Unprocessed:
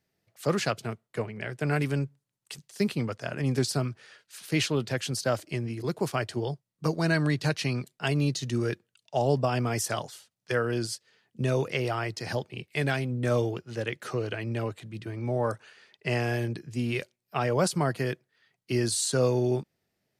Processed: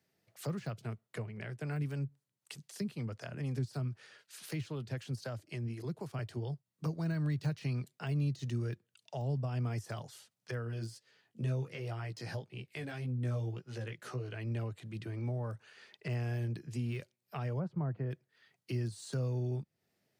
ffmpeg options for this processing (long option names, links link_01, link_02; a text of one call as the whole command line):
ffmpeg -i in.wav -filter_complex "[0:a]asettb=1/sr,asplit=3[link_01][link_02][link_03];[link_01]atrim=end=1.564[link_04];[link_02]atrim=start=1.56:end=6.19,asetpts=PTS-STARTPTS,afade=type=in:duration=0.004:curve=qsin,afade=type=out:start_time=4.626:duration=0.004:curve=qsin,acrossover=split=410[link_05][link_06];[link_05]aeval=exprs='val(0)*(1-0.5/2+0.5/2*cos(2*PI*3.9*n/s))':channel_layout=same[link_07];[link_06]aeval=exprs='val(0)*(1-0.5/2-0.5/2*cos(2*PI*3.9*n/s))':channel_layout=same[link_08];[link_07][link_08]amix=inputs=2:normalize=0[link_09];[link_03]atrim=start=6.186[link_10];[link_04][link_09]acrossfade=duration=0.004:curve1=hsin:curve2=qsin[link_11];[link_11][link_10]acrossfade=duration=0.004:curve1=qsin:curve2=hsin,asplit=3[link_12][link_13][link_14];[link_12]afade=type=out:start_time=10.64:duration=0.02[link_15];[link_13]flanger=delay=15.5:depth=2.8:speed=1.9,afade=type=in:start_time=10.64:duration=0.02,afade=type=out:start_time=14.34:duration=0.02[link_16];[link_14]afade=type=in:start_time=14.34:duration=0.02[link_17];[link_15][link_16][link_17]amix=inputs=3:normalize=0,asplit=3[link_18][link_19][link_20];[link_18]afade=type=out:start_time=17.58:duration=0.02[link_21];[link_19]lowpass=1200,afade=type=in:start_time=17.58:duration=0.02,afade=type=out:start_time=18.1:duration=0.02[link_22];[link_20]afade=type=in:start_time=18.1:duration=0.02[link_23];[link_21][link_22][link_23]amix=inputs=3:normalize=0,deesser=1,highpass=92,acrossover=split=150[link_24][link_25];[link_25]acompressor=threshold=-44dB:ratio=4[link_26];[link_24][link_26]amix=inputs=2:normalize=0" out.wav